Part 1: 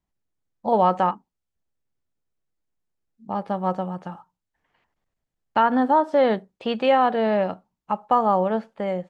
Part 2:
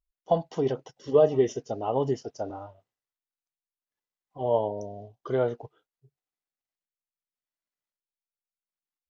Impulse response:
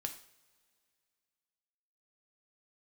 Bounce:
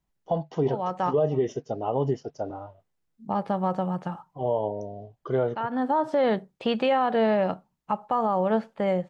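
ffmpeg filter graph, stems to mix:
-filter_complex "[0:a]volume=1.5dB[a];[1:a]lowpass=f=2.7k:p=1,volume=1.5dB,asplit=2[b][c];[c]apad=whole_len=400905[d];[a][d]sidechaincompress=threshold=-37dB:ratio=16:attack=34:release=524[e];[e][b]amix=inputs=2:normalize=0,equalizer=f=150:w=7.1:g=8.5,alimiter=limit=-15dB:level=0:latency=1:release=94"

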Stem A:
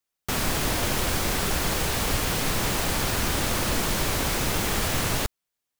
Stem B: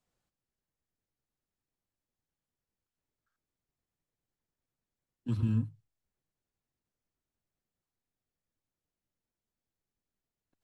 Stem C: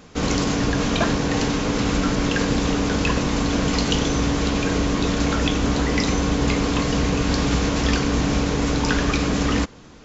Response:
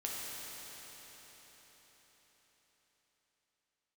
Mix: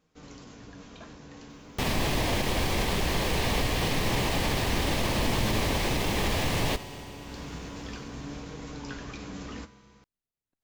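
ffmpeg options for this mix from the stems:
-filter_complex "[0:a]alimiter=limit=-19.5dB:level=0:latency=1:release=72,equalizer=f=1.4k:w=4.8:g=-12,acrossover=split=4700[a][b];[b]acompressor=threshold=-44dB:ratio=4:attack=1:release=60[c];[a][c]amix=inputs=2:normalize=0,adelay=1500,volume=2.5dB,asplit=2[d][e];[e]volume=-12dB[f];[1:a]volume=-5.5dB[g];[2:a]flanger=delay=6.3:depth=7.5:regen=61:speed=0.35:shape=sinusoidal,volume=-15.5dB,afade=t=in:st=7.18:d=0.23:silence=0.446684,asplit=2[h][i];[i]volume=-17dB[j];[3:a]atrim=start_sample=2205[k];[f][j]amix=inputs=2:normalize=0[l];[l][k]afir=irnorm=-1:irlink=0[m];[d][g][h][m]amix=inputs=4:normalize=0"

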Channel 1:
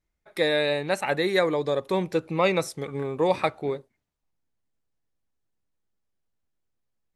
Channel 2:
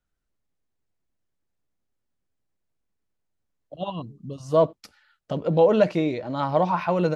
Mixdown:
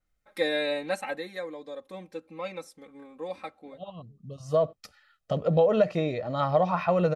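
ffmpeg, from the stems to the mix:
-filter_complex "[0:a]aecho=1:1:3.8:0.96,volume=-7dB,afade=t=out:st=0.85:d=0.45:silence=0.298538,asplit=2[a][b];[1:a]aecho=1:1:1.6:0.53,acompressor=threshold=-16dB:ratio=6,adynamicequalizer=threshold=0.00891:dfrequency=3000:dqfactor=0.7:tfrequency=3000:tqfactor=0.7:attack=5:release=100:ratio=0.375:range=2:mode=cutabove:tftype=highshelf,volume=-1.5dB[c];[b]apad=whole_len=315603[d];[c][d]sidechaincompress=threshold=-46dB:ratio=8:attack=9.4:release=1150[e];[a][e]amix=inputs=2:normalize=0"

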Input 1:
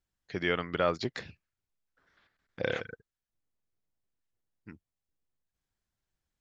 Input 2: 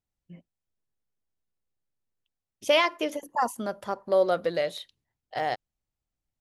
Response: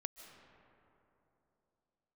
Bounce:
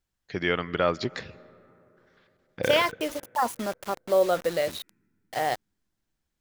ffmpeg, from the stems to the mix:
-filter_complex "[0:a]volume=2dB,asplit=2[a][b];[b]volume=-10dB[c];[1:a]dynaudnorm=f=120:g=7:m=10.5dB,acrusher=bits=4:mix=0:aa=0.000001,volume=-8.5dB[d];[2:a]atrim=start_sample=2205[e];[c][e]afir=irnorm=-1:irlink=0[f];[a][d][f]amix=inputs=3:normalize=0"

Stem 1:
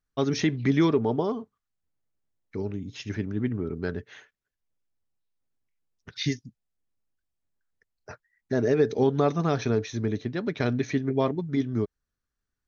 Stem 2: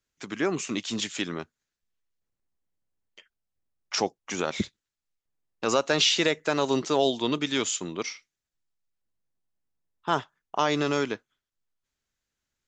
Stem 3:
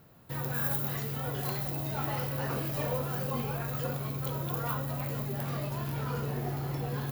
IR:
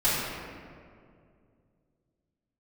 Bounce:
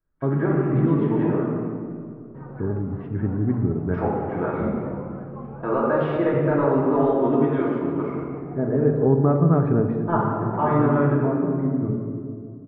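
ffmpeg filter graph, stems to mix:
-filter_complex "[0:a]equalizer=f=82:w=0.36:g=6,adelay=50,volume=1dB,asplit=2[a][b];[b]volume=-18.5dB[c];[1:a]acontrast=80,volume=-11.5dB,asplit=3[d][e][f];[e]volume=-4.5dB[g];[2:a]adelay=2050,volume=-3.5dB[h];[f]apad=whole_len=561250[i];[a][i]sidechaincompress=threshold=-40dB:ratio=8:attack=16:release=1340[j];[3:a]atrim=start_sample=2205[k];[c][g]amix=inputs=2:normalize=0[l];[l][k]afir=irnorm=-1:irlink=0[m];[j][d][h][m]amix=inputs=4:normalize=0,lowpass=f=1.4k:w=0.5412,lowpass=f=1.4k:w=1.3066"

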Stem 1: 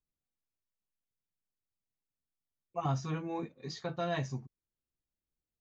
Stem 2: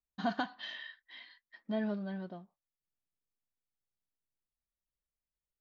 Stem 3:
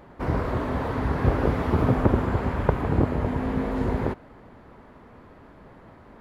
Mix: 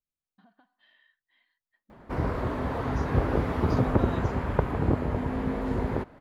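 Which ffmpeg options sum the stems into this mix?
-filter_complex "[0:a]volume=-6dB[a];[1:a]lowpass=2.8k,acompressor=threshold=-42dB:ratio=10,adelay=200,volume=-16dB[b];[2:a]adelay=1900,volume=-3dB[c];[a][b][c]amix=inputs=3:normalize=0"

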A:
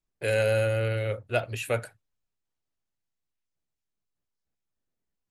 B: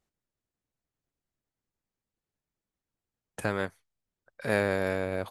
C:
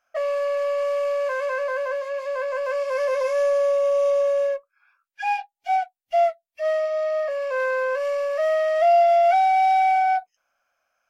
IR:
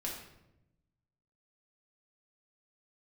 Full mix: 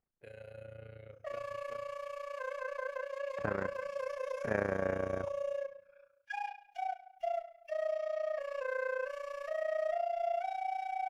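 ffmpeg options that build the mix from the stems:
-filter_complex "[0:a]highshelf=f=3k:g=-11,bandreject=f=60:t=h:w=6,bandreject=f=120:t=h:w=6,alimiter=limit=-20dB:level=0:latency=1:release=420,volume=-20dB,asplit=2[a][b];[b]volume=-10dB[c];[1:a]lowpass=f=2k:w=0.5412,lowpass=f=2k:w=1.3066,volume=-3.5dB,asplit=2[d][e];[e]volume=-18.5dB[f];[2:a]equalizer=f=4.7k:t=o:w=0.22:g=-4,alimiter=limit=-22.5dB:level=0:latency=1:release=202,adelay=1100,volume=-9dB,asplit=2[g][h];[h]volume=-4.5dB[i];[3:a]atrim=start_sample=2205[j];[c][f][i]amix=inputs=3:normalize=0[k];[k][j]afir=irnorm=-1:irlink=0[l];[a][d][g][l]amix=inputs=4:normalize=0,tremolo=f=29:d=0.824"

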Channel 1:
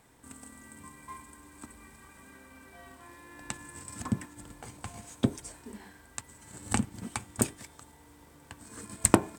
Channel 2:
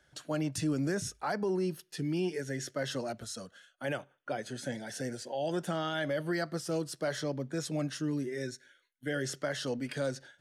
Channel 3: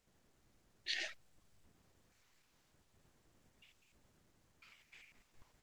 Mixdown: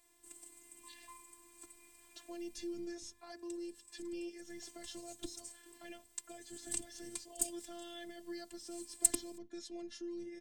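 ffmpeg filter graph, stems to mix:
-filter_complex "[0:a]highshelf=f=2.6k:g=11.5,volume=0.5dB,afade=t=out:st=2.51:d=0.37:silence=0.266073,afade=t=in:st=4.34:d=0.26:silence=0.298538[a];[1:a]lowpass=6.8k,bandreject=f=50:t=h:w=6,bandreject=f=100:t=h:w=6,bandreject=f=150:t=h:w=6,bandreject=f=200:t=h:w=6,adelay=2000,volume=-4dB[b];[2:a]volume=-14.5dB[c];[a][b][c]amix=inputs=3:normalize=0,acrossover=split=280|3000[d][e][f];[e]acompressor=threshold=-52dB:ratio=3[g];[d][g][f]amix=inputs=3:normalize=0,bandreject=f=1.4k:w=7.7,afftfilt=real='hypot(re,im)*cos(PI*b)':imag='0':win_size=512:overlap=0.75"

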